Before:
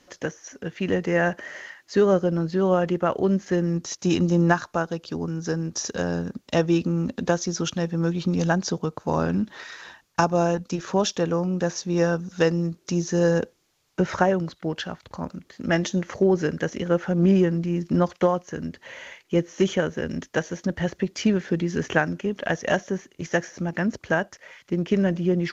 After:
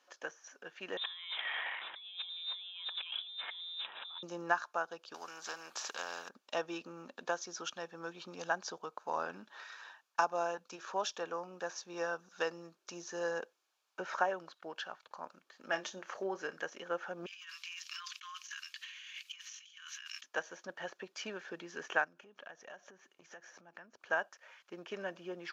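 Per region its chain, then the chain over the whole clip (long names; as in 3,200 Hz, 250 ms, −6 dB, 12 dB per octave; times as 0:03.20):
0:00.97–0:04.23: converter with a step at zero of −33 dBFS + compressor whose output falls as the input rises −32 dBFS + voice inversion scrambler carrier 3,800 Hz
0:05.14–0:06.29: low-shelf EQ 170 Hz −8 dB + every bin compressed towards the loudest bin 2 to 1
0:15.67–0:16.63: upward compression, threshold −27 dBFS + double-tracking delay 31 ms −12.5 dB
0:17.26–0:20.24: linear-phase brick-wall high-pass 1,000 Hz + high shelf with overshoot 1,900 Hz +12 dB, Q 1.5 + compressor whose output falls as the input rises −39 dBFS
0:22.04–0:24.11: bass and treble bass +7 dB, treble −2 dB + downward compressor 8 to 1, threshold −34 dBFS
whole clip: high-pass filter 1,000 Hz 12 dB per octave; high-shelf EQ 2,300 Hz −12 dB; notch filter 2,000 Hz, Q 5.4; level −2.5 dB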